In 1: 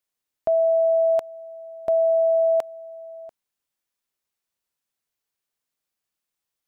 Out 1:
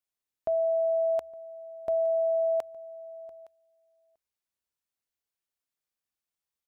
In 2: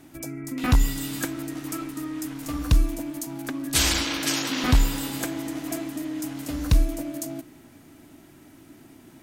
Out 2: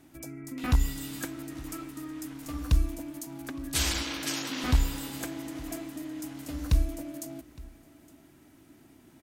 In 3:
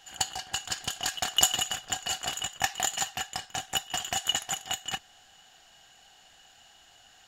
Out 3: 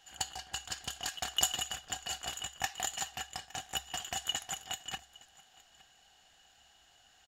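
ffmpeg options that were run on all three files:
ffmpeg -i in.wav -filter_complex "[0:a]equalizer=frequency=66:width_type=o:width=0.2:gain=11,asplit=2[link_01][link_02];[link_02]aecho=0:1:864:0.075[link_03];[link_01][link_03]amix=inputs=2:normalize=0,volume=-7dB" out.wav

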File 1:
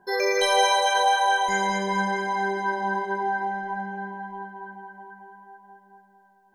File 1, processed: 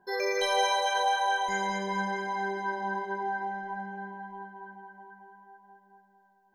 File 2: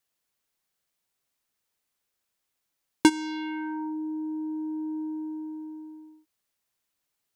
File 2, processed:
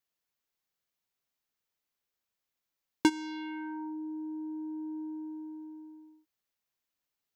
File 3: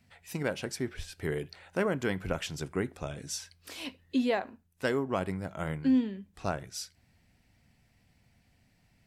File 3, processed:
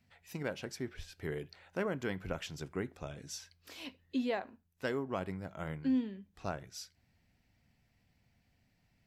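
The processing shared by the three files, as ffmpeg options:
ffmpeg -i in.wav -af "equalizer=frequency=9200:width=2.7:gain=-8.5,volume=-6dB" out.wav

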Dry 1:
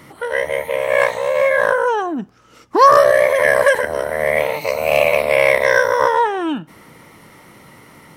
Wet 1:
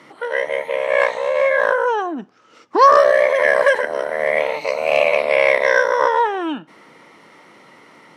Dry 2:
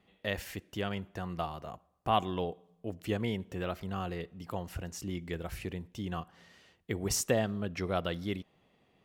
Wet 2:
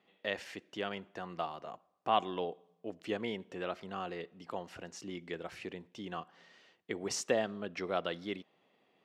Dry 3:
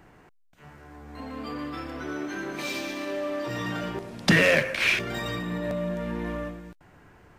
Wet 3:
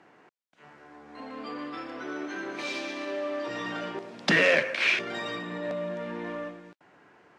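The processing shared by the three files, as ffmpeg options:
ffmpeg -i in.wav -af "highpass=270,lowpass=5700,volume=-1dB" out.wav

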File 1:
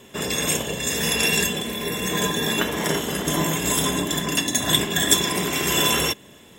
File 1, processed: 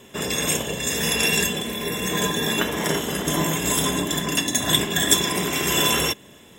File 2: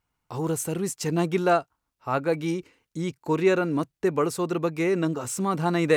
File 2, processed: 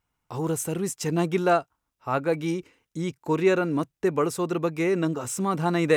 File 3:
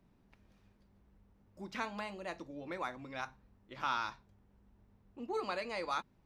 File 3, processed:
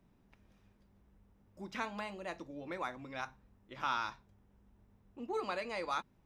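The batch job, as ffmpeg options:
ffmpeg -i in.wav -af "bandreject=frequency=4400:width=13" out.wav

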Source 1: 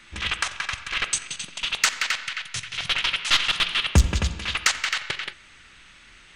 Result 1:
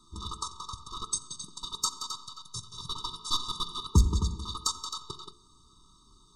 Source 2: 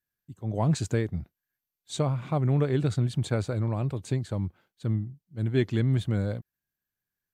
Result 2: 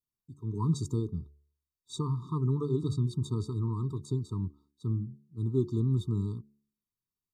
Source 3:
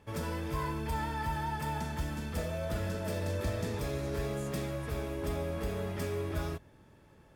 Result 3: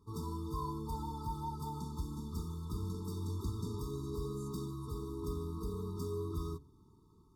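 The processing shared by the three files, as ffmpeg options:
ffmpeg -i in.wav -af "asuperstop=centerf=2200:order=12:qfactor=1,bandreject=frequency=71.63:width_type=h:width=4,bandreject=frequency=143.26:width_type=h:width=4,bandreject=frequency=214.89:width_type=h:width=4,bandreject=frequency=286.52:width_type=h:width=4,bandreject=frequency=358.15:width_type=h:width=4,bandreject=frequency=429.78:width_type=h:width=4,bandreject=frequency=501.41:width_type=h:width=4,bandreject=frequency=573.04:width_type=h:width=4,bandreject=frequency=644.67:width_type=h:width=4,bandreject=frequency=716.3:width_type=h:width=4,afftfilt=real='re*eq(mod(floor(b*sr/1024/440),2),0)':imag='im*eq(mod(floor(b*sr/1024/440),2),0)':win_size=1024:overlap=0.75,volume=-3dB" out.wav

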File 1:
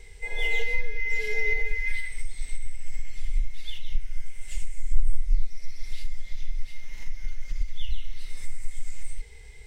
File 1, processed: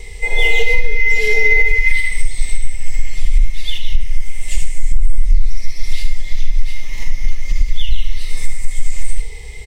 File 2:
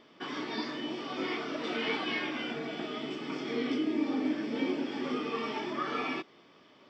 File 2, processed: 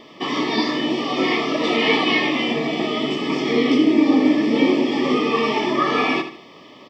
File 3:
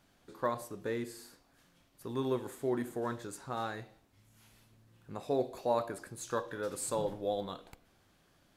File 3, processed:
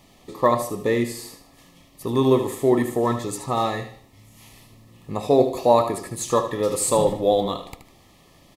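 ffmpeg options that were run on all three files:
ffmpeg -i in.wav -af "asuperstop=centerf=1500:order=20:qfactor=4.2,aecho=1:1:76|152|228|304:0.316|0.104|0.0344|0.0114,alimiter=level_in=15.5dB:limit=-1dB:release=50:level=0:latency=1,volume=-1dB" out.wav

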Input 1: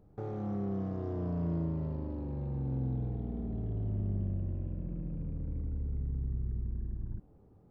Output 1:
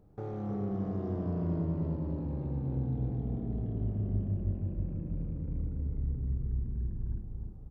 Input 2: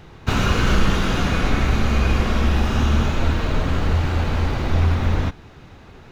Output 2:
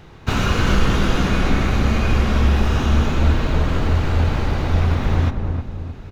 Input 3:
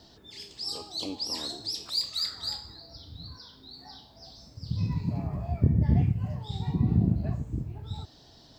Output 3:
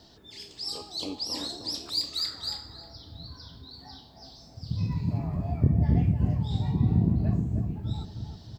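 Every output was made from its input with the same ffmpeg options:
ffmpeg -i in.wav -filter_complex "[0:a]asplit=2[link_01][link_02];[link_02]adelay=312,lowpass=frequency=830:poles=1,volume=-4dB,asplit=2[link_03][link_04];[link_04]adelay=312,lowpass=frequency=830:poles=1,volume=0.48,asplit=2[link_05][link_06];[link_06]adelay=312,lowpass=frequency=830:poles=1,volume=0.48,asplit=2[link_07][link_08];[link_08]adelay=312,lowpass=frequency=830:poles=1,volume=0.48,asplit=2[link_09][link_10];[link_10]adelay=312,lowpass=frequency=830:poles=1,volume=0.48,asplit=2[link_11][link_12];[link_12]adelay=312,lowpass=frequency=830:poles=1,volume=0.48[link_13];[link_01][link_03][link_05][link_07][link_09][link_11][link_13]amix=inputs=7:normalize=0" out.wav

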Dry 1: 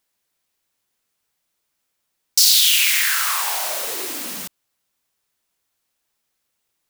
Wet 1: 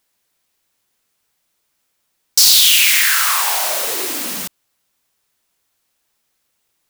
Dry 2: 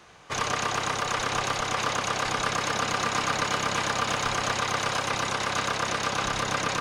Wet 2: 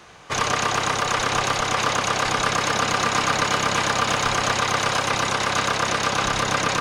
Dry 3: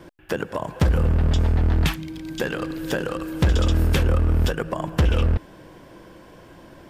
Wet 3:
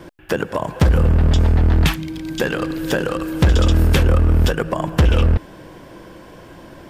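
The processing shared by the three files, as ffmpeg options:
ffmpeg -i in.wav -af "acontrast=71,volume=-1dB" out.wav

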